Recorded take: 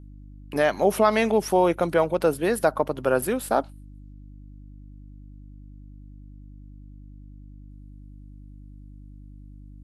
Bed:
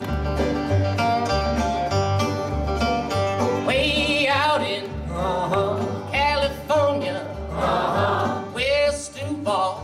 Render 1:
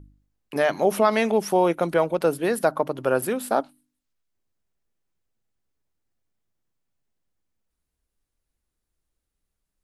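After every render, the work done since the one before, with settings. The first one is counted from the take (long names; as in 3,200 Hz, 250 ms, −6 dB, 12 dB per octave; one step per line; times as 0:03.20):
hum removal 50 Hz, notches 6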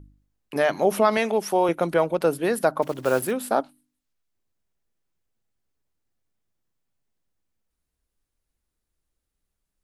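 0:01.17–0:01.69: high-pass filter 300 Hz 6 dB per octave
0:02.82–0:03.33: one scale factor per block 5 bits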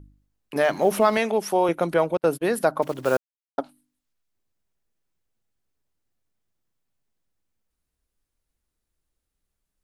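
0:00.56–0:01.18: mu-law and A-law mismatch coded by mu
0:02.17–0:02.58: noise gate −34 dBFS, range −41 dB
0:03.17–0:03.58: silence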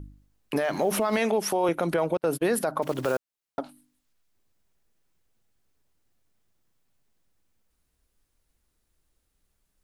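in parallel at +1 dB: downward compressor, threshold −29 dBFS, peak gain reduction 15 dB
on the sum: brickwall limiter −15.5 dBFS, peak gain reduction 11 dB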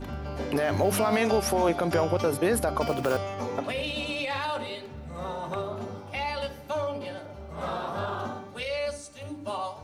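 mix in bed −11 dB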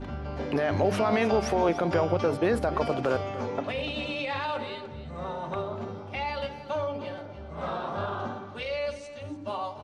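high-frequency loss of the air 110 metres
single-tap delay 293 ms −14 dB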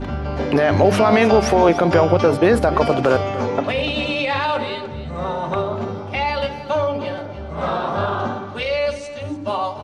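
level +10.5 dB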